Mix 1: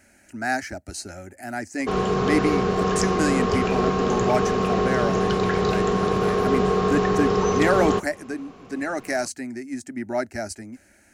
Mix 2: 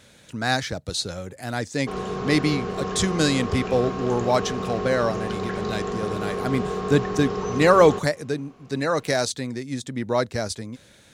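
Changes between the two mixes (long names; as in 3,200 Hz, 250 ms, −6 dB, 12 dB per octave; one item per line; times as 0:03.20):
speech: remove phaser with its sweep stopped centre 720 Hz, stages 8
background −7.0 dB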